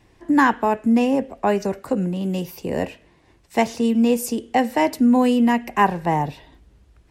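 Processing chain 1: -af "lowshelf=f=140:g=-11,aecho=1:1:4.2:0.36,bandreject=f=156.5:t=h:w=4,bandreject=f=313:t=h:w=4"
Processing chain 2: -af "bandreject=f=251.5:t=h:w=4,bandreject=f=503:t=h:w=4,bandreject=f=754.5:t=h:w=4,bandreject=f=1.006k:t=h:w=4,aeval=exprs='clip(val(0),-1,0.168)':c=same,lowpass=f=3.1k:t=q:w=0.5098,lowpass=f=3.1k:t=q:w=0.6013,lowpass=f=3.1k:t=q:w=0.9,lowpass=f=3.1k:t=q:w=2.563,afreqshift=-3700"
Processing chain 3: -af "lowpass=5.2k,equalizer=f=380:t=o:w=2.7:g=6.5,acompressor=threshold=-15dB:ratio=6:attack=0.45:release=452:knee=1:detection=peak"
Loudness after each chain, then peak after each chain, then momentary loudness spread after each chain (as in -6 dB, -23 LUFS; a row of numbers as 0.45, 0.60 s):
-20.5, -18.0, -23.0 LUFS; -4.0, -5.5, -11.5 dBFS; 11, 9, 8 LU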